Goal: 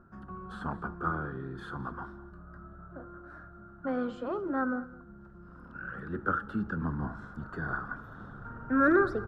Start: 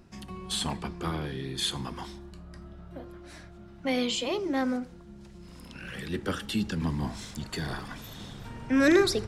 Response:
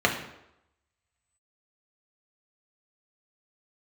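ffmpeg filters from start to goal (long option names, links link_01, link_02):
-filter_complex "[0:a]firequalizer=gain_entry='entry(950,0);entry(1400,15);entry(2100,-20);entry(6500,-29)':delay=0.05:min_phase=1,asplit=2[link_01][link_02];[link_02]aecho=0:1:212:0.106[link_03];[link_01][link_03]amix=inputs=2:normalize=0,volume=-3.5dB"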